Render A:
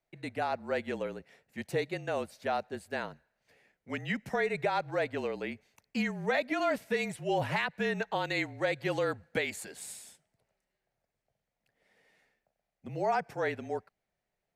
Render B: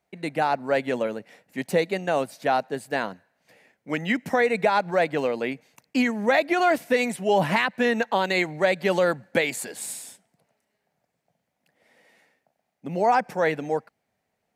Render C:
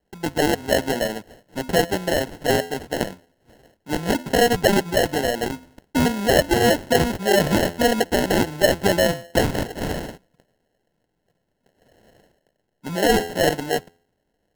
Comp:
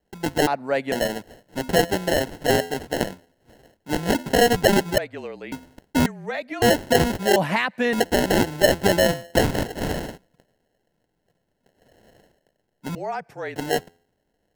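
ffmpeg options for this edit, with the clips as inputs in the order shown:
-filter_complex "[1:a]asplit=2[a][b];[0:a]asplit=3[c][d][e];[2:a]asplit=6[f][g][h][i][j][k];[f]atrim=end=0.472[l];[a]atrim=start=0.468:end=0.922[m];[g]atrim=start=0.918:end=4.982[n];[c]atrim=start=4.978:end=5.522[o];[h]atrim=start=5.518:end=6.062[p];[d]atrim=start=6.058:end=6.622[q];[i]atrim=start=6.618:end=7.362[r];[b]atrim=start=7.358:end=7.932[s];[j]atrim=start=7.928:end=12.952[t];[e]atrim=start=12.948:end=13.562[u];[k]atrim=start=13.558[v];[l][m]acrossfade=d=0.004:c1=hsin:c2=hsin[w];[w][n]acrossfade=d=0.004:c1=hsin:c2=hsin[x];[x][o]acrossfade=d=0.004:c1=hsin:c2=hsin[y];[y][p]acrossfade=d=0.004:c1=hsin:c2=hsin[z];[z][q]acrossfade=d=0.004:c1=hsin:c2=hsin[aa];[aa][r]acrossfade=d=0.004:c1=hsin:c2=hsin[ab];[ab][s]acrossfade=d=0.004:c1=hsin:c2=hsin[ac];[ac][t]acrossfade=d=0.004:c1=hsin:c2=hsin[ad];[ad][u]acrossfade=d=0.004:c1=hsin:c2=hsin[ae];[ae][v]acrossfade=d=0.004:c1=hsin:c2=hsin"

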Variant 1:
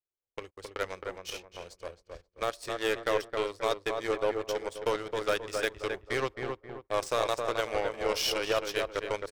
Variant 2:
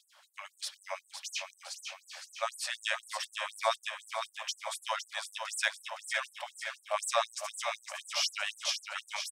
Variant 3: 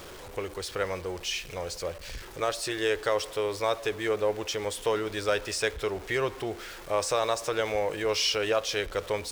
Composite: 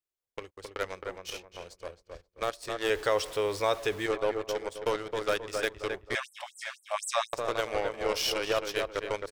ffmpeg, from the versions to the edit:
-filter_complex "[0:a]asplit=3[a][b][c];[a]atrim=end=2.902[d];[2:a]atrim=start=2.898:end=4.062[e];[b]atrim=start=4.058:end=6.152[f];[1:a]atrim=start=6.148:end=7.332[g];[c]atrim=start=7.328[h];[d][e]acrossfade=d=0.004:c1=hsin:c2=hsin[i];[i][f]acrossfade=d=0.004:c1=hsin:c2=hsin[j];[j][g]acrossfade=d=0.004:c1=hsin:c2=hsin[k];[k][h]acrossfade=d=0.004:c1=hsin:c2=hsin"

